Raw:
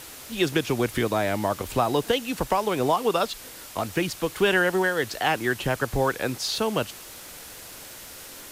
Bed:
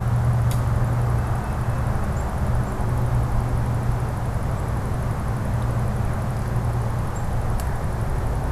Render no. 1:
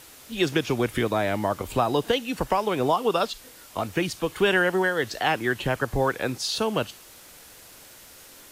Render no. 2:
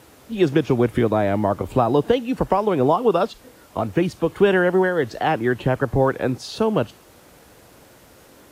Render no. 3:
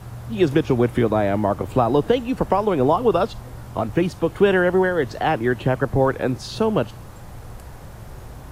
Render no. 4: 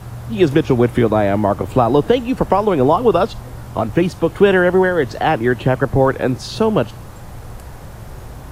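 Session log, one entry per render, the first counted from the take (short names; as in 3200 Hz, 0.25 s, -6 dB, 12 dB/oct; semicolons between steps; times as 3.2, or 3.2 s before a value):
noise print and reduce 6 dB
HPF 49 Hz; tilt shelf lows +7.5 dB, about 1500 Hz
add bed -14.5 dB
gain +4.5 dB; limiter -1 dBFS, peak gain reduction 1 dB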